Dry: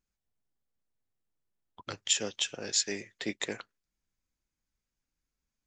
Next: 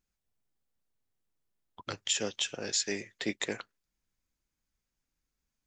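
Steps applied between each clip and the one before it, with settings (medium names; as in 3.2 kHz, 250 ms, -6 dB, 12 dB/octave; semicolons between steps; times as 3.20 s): peak limiter -19 dBFS, peak gain reduction 6.5 dB; trim +1.5 dB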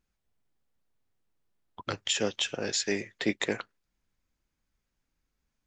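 treble shelf 4.9 kHz -9.5 dB; trim +5.5 dB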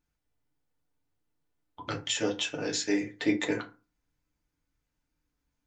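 FDN reverb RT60 0.32 s, low-frequency decay 1.25×, high-frequency decay 0.55×, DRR -1 dB; trim -4 dB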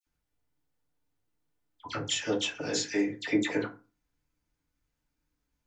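phase dispersion lows, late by 68 ms, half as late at 2 kHz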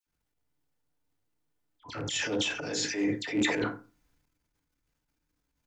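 rattle on loud lows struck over -33 dBFS, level -31 dBFS; transient shaper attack -9 dB, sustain +9 dB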